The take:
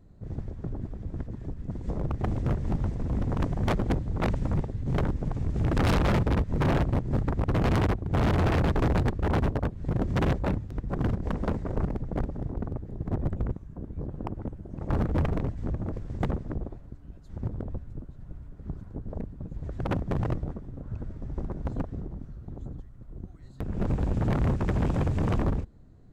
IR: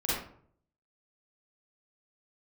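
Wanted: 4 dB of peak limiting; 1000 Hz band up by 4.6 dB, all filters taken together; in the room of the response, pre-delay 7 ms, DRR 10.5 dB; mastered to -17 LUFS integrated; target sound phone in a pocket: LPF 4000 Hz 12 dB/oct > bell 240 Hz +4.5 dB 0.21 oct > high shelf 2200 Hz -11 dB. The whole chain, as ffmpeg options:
-filter_complex "[0:a]equalizer=f=1k:t=o:g=8,alimiter=limit=-17dB:level=0:latency=1,asplit=2[a][b];[1:a]atrim=start_sample=2205,adelay=7[c];[b][c]afir=irnorm=-1:irlink=0,volume=-19dB[d];[a][d]amix=inputs=2:normalize=0,lowpass=4k,equalizer=f=240:t=o:w=0.21:g=4.5,highshelf=f=2.2k:g=-11,volume=12.5dB"

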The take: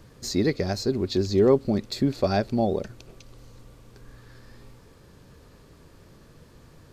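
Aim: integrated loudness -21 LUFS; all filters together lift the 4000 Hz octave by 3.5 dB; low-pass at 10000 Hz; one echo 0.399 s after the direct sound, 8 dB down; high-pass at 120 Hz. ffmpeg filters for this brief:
-af "highpass=120,lowpass=10k,equalizer=f=4k:t=o:g=4,aecho=1:1:399:0.398,volume=3.5dB"

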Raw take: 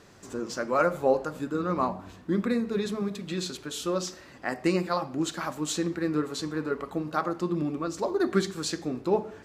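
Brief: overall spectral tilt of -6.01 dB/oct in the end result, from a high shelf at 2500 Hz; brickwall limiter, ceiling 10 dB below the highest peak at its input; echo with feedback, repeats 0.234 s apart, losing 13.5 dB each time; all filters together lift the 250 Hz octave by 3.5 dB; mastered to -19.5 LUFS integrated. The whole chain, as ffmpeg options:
-af "equalizer=f=250:t=o:g=5,highshelf=f=2.5k:g=-5.5,alimiter=limit=-19dB:level=0:latency=1,aecho=1:1:234|468:0.211|0.0444,volume=10.5dB"

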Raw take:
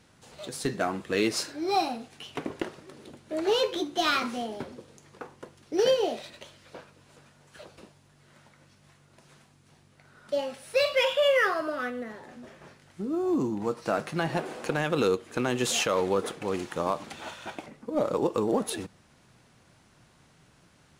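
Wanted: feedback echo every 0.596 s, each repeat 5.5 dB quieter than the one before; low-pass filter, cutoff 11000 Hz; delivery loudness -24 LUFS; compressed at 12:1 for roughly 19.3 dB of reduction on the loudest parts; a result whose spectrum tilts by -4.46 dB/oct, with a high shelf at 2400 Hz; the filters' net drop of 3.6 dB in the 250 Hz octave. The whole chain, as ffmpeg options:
-af "lowpass=11k,equalizer=f=250:t=o:g=-5,highshelf=f=2.4k:g=-7,acompressor=threshold=-41dB:ratio=12,aecho=1:1:596|1192|1788|2384|2980|3576|4172:0.531|0.281|0.149|0.079|0.0419|0.0222|0.0118,volume=21.5dB"

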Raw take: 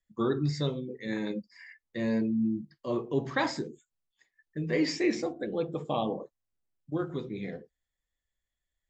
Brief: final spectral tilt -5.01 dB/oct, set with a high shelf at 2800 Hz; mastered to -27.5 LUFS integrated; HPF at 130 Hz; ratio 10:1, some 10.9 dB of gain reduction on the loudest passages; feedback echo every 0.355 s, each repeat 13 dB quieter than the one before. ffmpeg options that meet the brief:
-af "highpass=130,highshelf=f=2.8k:g=8.5,acompressor=threshold=-33dB:ratio=10,aecho=1:1:355|710|1065:0.224|0.0493|0.0108,volume=11.5dB"

